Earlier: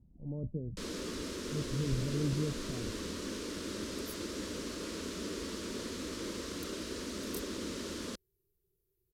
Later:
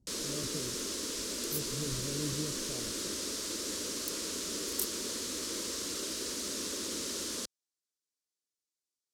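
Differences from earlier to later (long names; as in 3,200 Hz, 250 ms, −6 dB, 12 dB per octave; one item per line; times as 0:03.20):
first sound: entry −0.70 s
second sound: entry −2.55 s
master: add bass and treble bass −7 dB, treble +12 dB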